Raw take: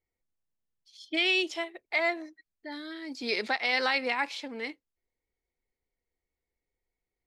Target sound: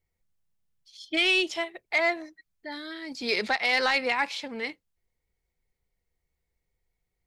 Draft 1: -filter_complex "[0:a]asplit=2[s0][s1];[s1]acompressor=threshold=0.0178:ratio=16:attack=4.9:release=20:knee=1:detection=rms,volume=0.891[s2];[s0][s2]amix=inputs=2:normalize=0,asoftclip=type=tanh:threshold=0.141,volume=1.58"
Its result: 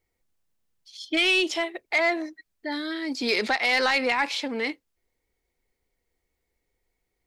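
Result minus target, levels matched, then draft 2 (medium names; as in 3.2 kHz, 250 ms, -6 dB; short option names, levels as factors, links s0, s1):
250 Hz band +4.0 dB
-filter_complex "[0:a]asplit=2[s0][s1];[s1]acompressor=threshold=0.0178:ratio=16:attack=4.9:release=20:knee=1:detection=rms,lowpass=f=190:t=q:w=1.7,volume=0.891[s2];[s0][s2]amix=inputs=2:normalize=0,asoftclip=type=tanh:threshold=0.141,volume=1.58"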